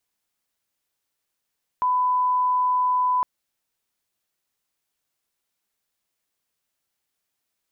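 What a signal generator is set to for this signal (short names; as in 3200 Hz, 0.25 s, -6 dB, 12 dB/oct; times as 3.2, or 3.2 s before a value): line-up tone -18 dBFS 1.41 s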